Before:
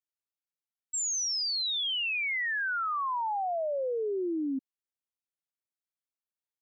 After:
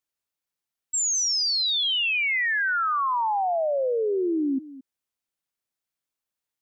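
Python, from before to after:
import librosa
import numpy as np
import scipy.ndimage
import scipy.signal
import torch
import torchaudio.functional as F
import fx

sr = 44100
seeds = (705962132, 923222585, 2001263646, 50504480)

p1 = x + fx.echo_single(x, sr, ms=219, db=-17.0, dry=0)
y = p1 * 10.0 ** (6.5 / 20.0)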